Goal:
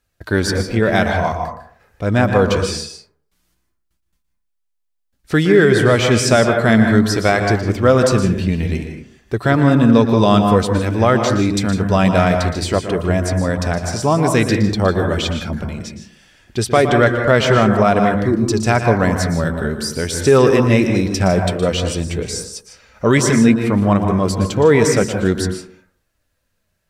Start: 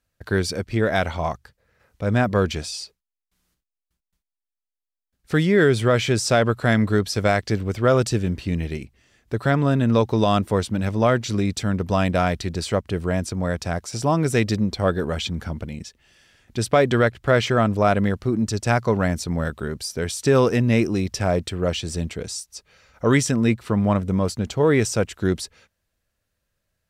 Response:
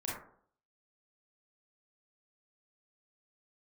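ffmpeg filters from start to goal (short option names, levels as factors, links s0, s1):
-filter_complex "[0:a]flanger=delay=2.3:depth=3:regen=63:speed=0.54:shape=triangular,asplit=2[s0][s1];[1:a]atrim=start_sample=2205,adelay=117[s2];[s1][s2]afir=irnorm=-1:irlink=0,volume=0.422[s3];[s0][s3]amix=inputs=2:normalize=0,alimiter=level_in=3.35:limit=0.891:release=50:level=0:latency=1,volume=0.891"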